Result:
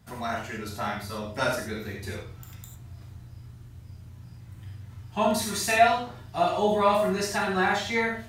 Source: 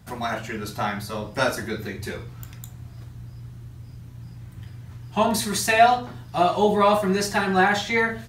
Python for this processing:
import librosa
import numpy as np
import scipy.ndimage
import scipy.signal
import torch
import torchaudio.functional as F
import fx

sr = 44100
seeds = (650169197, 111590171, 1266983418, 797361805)

y = fx.rev_gated(x, sr, seeds[0], gate_ms=120, shape='flat', drr_db=0.5)
y = y * 10.0 ** (-6.5 / 20.0)